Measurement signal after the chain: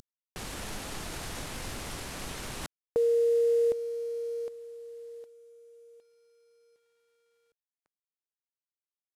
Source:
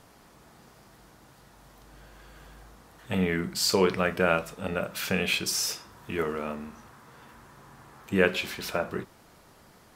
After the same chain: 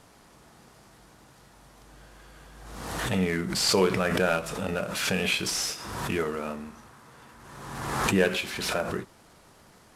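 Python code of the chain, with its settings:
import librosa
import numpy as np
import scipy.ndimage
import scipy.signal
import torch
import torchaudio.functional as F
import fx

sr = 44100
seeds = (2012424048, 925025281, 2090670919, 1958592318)

y = fx.cvsd(x, sr, bps=64000)
y = fx.pre_swell(y, sr, db_per_s=38.0)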